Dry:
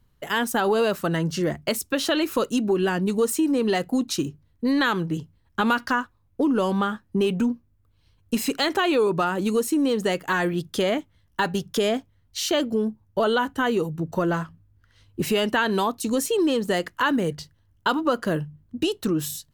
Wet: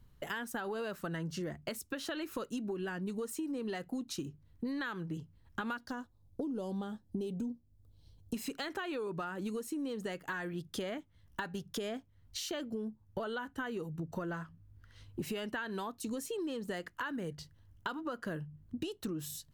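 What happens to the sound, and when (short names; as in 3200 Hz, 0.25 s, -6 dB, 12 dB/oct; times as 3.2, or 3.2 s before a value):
5.77–8.34 band shelf 1700 Hz -12 dB
whole clip: dynamic EQ 1600 Hz, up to +6 dB, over -38 dBFS, Q 2.2; compressor 4:1, threshold -39 dBFS; low shelf 240 Hz +4 dB; gain -1.5 dB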